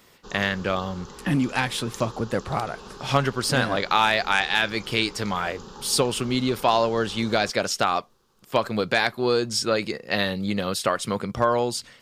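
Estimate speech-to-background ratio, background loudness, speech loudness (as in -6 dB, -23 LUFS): 18.0 dB, -42.5 LUFS, -24.5 LUFS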